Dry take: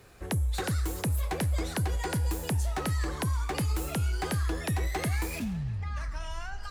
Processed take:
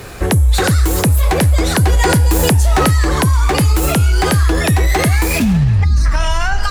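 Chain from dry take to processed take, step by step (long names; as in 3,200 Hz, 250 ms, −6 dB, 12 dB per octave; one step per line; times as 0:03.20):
0:05.84–0:06.06: gain on a spectral selection 400–3,700 Hz −19 dB
boost into a limiter +28.5 dB
0:01.83–0:02.91: envelope flattener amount 50%
level −5 dB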